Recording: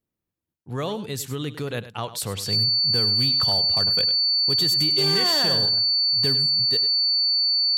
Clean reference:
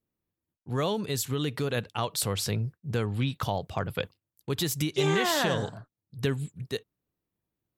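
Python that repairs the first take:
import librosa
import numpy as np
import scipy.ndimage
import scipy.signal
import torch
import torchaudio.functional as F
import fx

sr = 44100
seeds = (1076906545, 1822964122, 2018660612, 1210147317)

y = fx.fix_declip(x, sr, threshold_db=-15.5)
y = fx.notch(y, sr, hz=4500.0, q=30.0)
y = fx.fix_echo_inverse(y, sr, delay_ms=101, level_db=-14.0)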